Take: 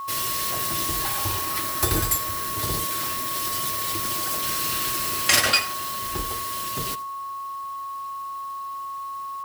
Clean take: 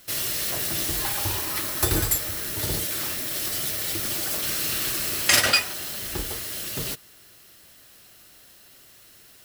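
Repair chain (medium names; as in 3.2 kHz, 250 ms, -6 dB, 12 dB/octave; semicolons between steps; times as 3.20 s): band-stop 1.1 kHz, Q 30; inverse comb 82 ms -17.5 dB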